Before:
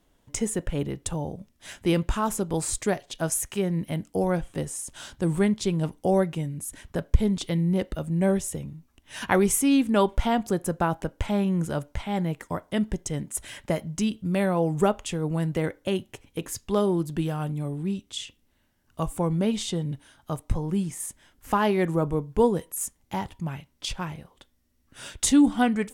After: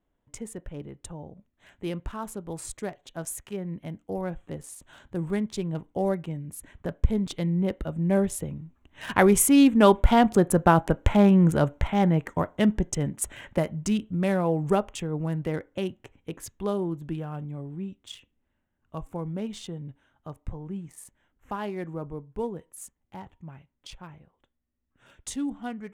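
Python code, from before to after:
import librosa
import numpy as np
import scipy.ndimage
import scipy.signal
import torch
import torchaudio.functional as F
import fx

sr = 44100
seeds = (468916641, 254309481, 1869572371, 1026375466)

y = fx.wiener(x, sr, points=9)
y = fx.doppler_pass(y, sr, speed_mps=5, closest_m=7.4, pass_at_s=11.14)
y = y * 10.0 ** (7.0 / 20.0)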